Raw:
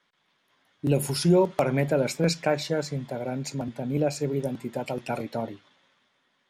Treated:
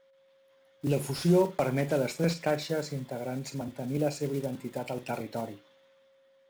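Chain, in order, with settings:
one scale factor per block 5 bits
flutter between parallel walls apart 8 metres, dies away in 0.21 s
steady tone 540 Hz −57 dBFS
slew-rate limiting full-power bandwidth 140 Hz
level −4 dB

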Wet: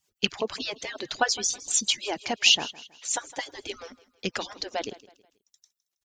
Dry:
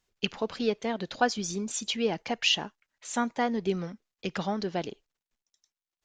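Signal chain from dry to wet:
harmonic-percussive split with one part muted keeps percussive
high-shelf EQ 4,200 Hz +11.5 dB
on a send: repeating echo 161 ms, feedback 37%, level −19 dB
on the sum: level +2 dB

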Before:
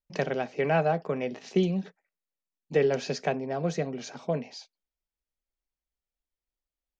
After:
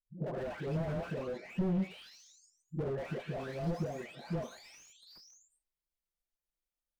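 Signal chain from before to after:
every frequency bin delayed by itself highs late, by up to 970 ms
tape wow and flutter 18 cents
slew-rate limiting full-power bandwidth 10 Hz
level −1.5 dB

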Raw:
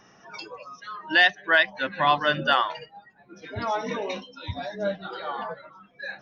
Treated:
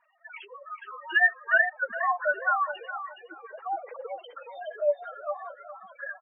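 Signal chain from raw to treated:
three sine waves on the formant tracks
gate on every frequency bin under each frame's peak −10 dB strong
on a send: repeating echo 416 ms, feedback 25%, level −9 dB
on the sum: flanger 0.5 Hz, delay 4 ms, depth 8.8 ms, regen +12%

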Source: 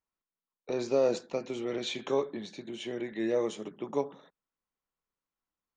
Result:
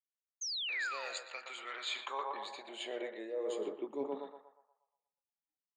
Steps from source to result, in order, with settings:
high-shelf EQ 4,400 Hz +4.5 dB
on a send: feedback echo with a band-pass in the loop 119 ms, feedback 50%, band-pass 900 Hz, level −5 dB
on the sum: sound drawn into the spectrogram fall, 0:00.41–0:01.23, 460–6,600 Hz −37 dBFS
noise reduction from a noise print of the clip's start 20 dB
high-pass filter sweep 1,800 Hz → 190 Hz, 0:01.26–0:04.70
reversed playback
downward compressor 20 to 1, threshold −32 dBFS, peak gain reduction 16 dB
reversed playback
level −2 dB

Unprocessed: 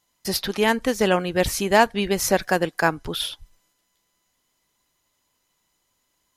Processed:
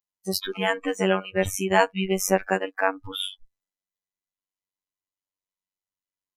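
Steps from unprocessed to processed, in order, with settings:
phases set to zero 95.2 Hz
noise reduction from a noise print of the clip's start 25 dB

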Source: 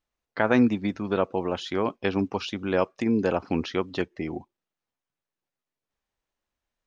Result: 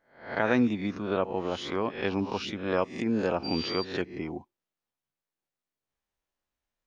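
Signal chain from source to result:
peak hold with a rise ahead of every peak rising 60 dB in 0.47 s
0:03.43–0:03.83: steady tone 4,700 Hz −30 dBFS
level −4.5 dB

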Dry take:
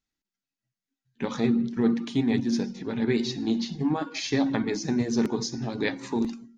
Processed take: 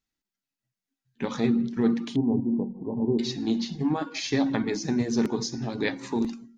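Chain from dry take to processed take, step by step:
0:02.16–0:03.19: linear-phase brick-wall low-pass 1,100 Hz

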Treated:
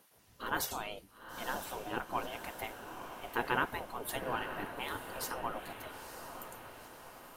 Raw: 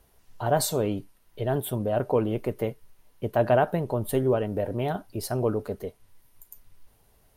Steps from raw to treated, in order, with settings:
gate on every frequency bin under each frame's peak −15 dB weak
feedback delay with all-pass diffusion 929 ms, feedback 55%, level −8.5 dB
level +1 dB

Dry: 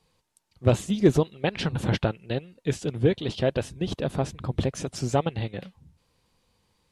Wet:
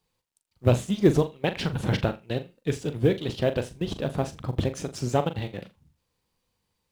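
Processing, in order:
mu-law and A-law mismatch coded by A
flutter between parallel walls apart 7 metres, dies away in 0.23 s

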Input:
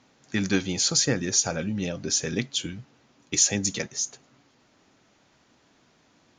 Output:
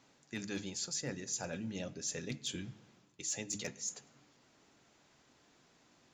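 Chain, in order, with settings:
high-shelf EQ 7,700 Hz +6.5 dB
mains-hum notches 50/100/150/200/250/300 Hz
reversed playback
downward compressor 5 to 1, threshold −32 dBFS, peak gain reduction 16.5 dB
reversed playback
gain into a clipping stage and back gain 23 dB
on a send at −16.5 dB: convolution reverb RT60 1.3 s, pre-delay 3 ms
on the sum: wrong playback speed 24 fps film run at 25 fps
level −5.5 dB

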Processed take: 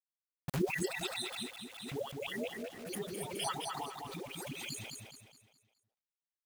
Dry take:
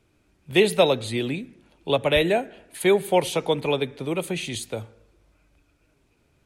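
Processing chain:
time-frequency cells dropped at random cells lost 65%
high-pass filter 92 Hz 24 dB per octave
volume swells 332 ms
in parallel at −11 dB: gain into a clipping stage and back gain 32.5 dB
on the sum: square-wave tremolo 3.4 Hz, depth 60%, duty 65%
all-pass dispersion highs, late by 150 ms, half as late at 560 Hz
bit reduction 9 bits
on a send: repeating echo 209 ms, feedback 39%, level −4 dB
on the sum: background raised ahead of every attack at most 55 dB per second
level −1 dB

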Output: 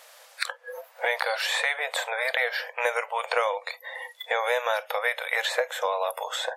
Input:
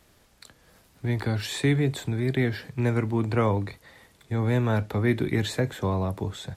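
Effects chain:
noise reduction from a noise print of the clip's start 25 dB
linear-phase brick-wall high-pass 470 Hz
multiband upward and downward compressor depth 100%
level +6.5 dB

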